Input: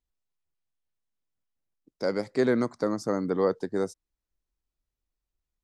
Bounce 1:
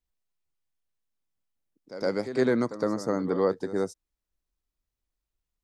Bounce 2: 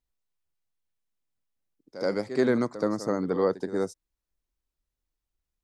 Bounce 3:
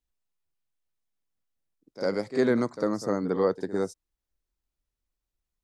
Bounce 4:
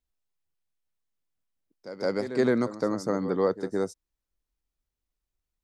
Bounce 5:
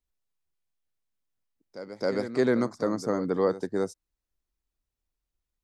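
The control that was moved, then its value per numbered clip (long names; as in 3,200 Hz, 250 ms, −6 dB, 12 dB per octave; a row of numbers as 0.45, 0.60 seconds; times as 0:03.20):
echo ahead of the sound, delay time: 112, 76, 51, 166, 267 milliseconds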